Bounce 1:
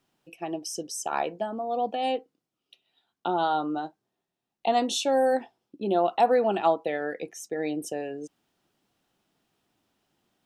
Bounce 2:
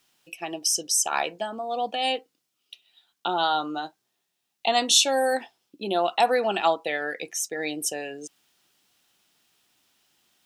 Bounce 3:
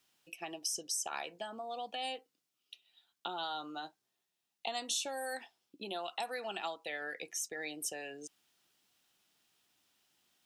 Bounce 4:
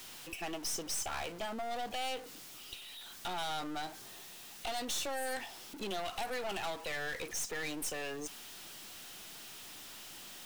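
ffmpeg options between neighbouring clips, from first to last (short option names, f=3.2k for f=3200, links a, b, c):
-af "tiltshelf=f=1.3k:g=-8.5,volume=4.5dB"
-filter_complex "[0:a]acrossover=split=740|1700|5800[a][b][c][d];[a]acompressor=threshold=-38dB:ratio=4[e];[b]acompressor=threshold=-37dB:ratio=4[f];[c]acompressor=threshold=-35dB:ratio=4[g];[d]acompressor=threshold=-30dB:ratio=4[h];[e][f][g][h]amix=inputs=4:normalize=0,volume=-7.5dB"
-af "aeval=exprs='val(0)+0.5*0.00447*sgn(val(0))':c=same,aeval=exprs='(tanh(112*val(0)+0.65)-tanh(0.65))/112':c=same,volume=6.5dB"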